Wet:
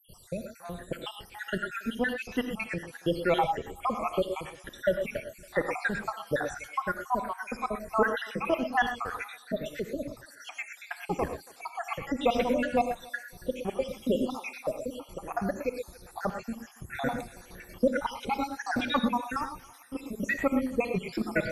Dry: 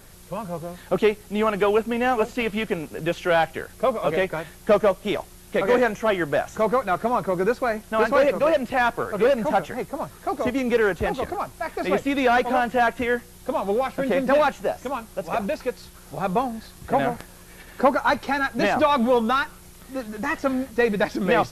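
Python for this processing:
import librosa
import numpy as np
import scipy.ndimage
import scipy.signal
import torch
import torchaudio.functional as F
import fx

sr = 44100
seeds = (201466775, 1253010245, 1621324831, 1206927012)

p1 = fx.spec_dropout(x, sr, seeds[0], share_pct=77)
p2 = fx.dynamic_eq(p1, sr, hz=580.0, q=0.84, threshold_db=-38.0, ratio=4.0, max_db=-4)
p3 = p2 + fx.echo_thinned(p2, sr, ms=279, feedback_pct=41, hz=460.0, wet_db=-22, dry=0)
y = fx.rev_gated(p3, sr, seeds[1], gate_ms=140, shape='rising', drr_db=6.5)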